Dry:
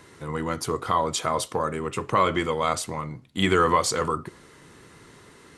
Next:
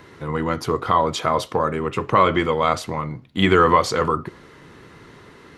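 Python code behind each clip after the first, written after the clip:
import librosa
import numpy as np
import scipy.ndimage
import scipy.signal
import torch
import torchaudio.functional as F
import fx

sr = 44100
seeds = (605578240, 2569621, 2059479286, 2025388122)

y = fx.peak_eq(x, sr, hz=8700.0, db=-14.0, octaves=1.1)
y = F.gain(torch.from_numpy(y), 5.5).numpy()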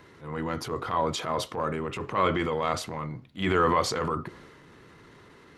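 y = fx.transient(x, sr, attack_db=-9, sustain_db=4)
y = F.gain(torch.from_numpy(y), -7.0).numpy()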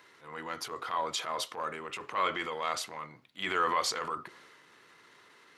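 y = fx.highpass(x, sr, hz=1400.0, slope=6)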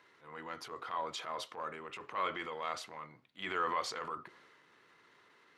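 y = fx.high_shelf(x, sr, hz=5900.0, db=-10.5)
y = F.gain(torch.from_numpy(y), -5.0).numpy()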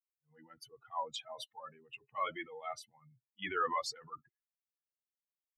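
y = fx.bin_expand(x, sr, power=3.0)
y = F.gain(torch.from_numpy(y), 4.5).numpy()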